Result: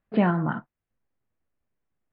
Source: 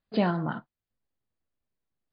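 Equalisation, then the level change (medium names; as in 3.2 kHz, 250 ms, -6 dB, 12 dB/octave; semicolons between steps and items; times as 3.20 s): low-pass 2.5 kHz 24 dB/octave; dynamic bell 540 Hz, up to -4 dB, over -40 dBFS, Q 1.2; +5.0 dB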